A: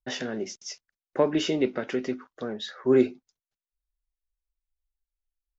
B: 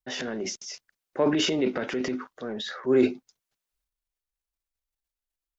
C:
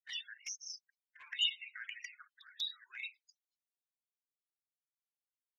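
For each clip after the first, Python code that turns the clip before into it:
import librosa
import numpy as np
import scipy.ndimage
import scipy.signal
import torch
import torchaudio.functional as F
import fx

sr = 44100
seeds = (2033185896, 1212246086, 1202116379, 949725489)

y1 = fx.low_shelf(x, sr, hz=67.0, db=-10.0)
y1 = fx.transient(y1, sr, attack_db=-3, sustain_db=9)
y2 = scipy.signal.sosfilt(scipy.signal.cheby2(4, 50, 680.0, 'highpass', fs=sr, output='sos'), y1)
y2 = fx.spec_topn(y2, sr, count=16)
y2 = fx.env_flanger(y2, sr, rest_ms=9.2, full_db=-38.5)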